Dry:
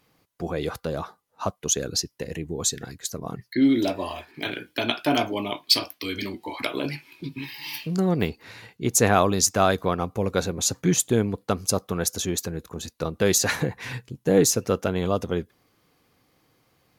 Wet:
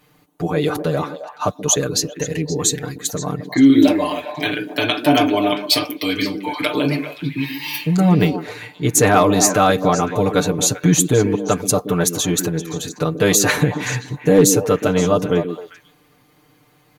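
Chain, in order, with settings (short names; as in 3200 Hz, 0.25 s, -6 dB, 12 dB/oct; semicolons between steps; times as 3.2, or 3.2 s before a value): bell 5100 Hz -7 dB 0.28 oct; comb 6.7 ms, depth 92%; in parallel at 0 dB: limiter -13 dBFS, peak gain reduction 10.5 dB; on the sum: overloaded stage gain 3.5 dB; on a send: delay with a stepping band-pass 0.131 s, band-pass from 280 Hz, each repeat 1.4 oct, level -4 dB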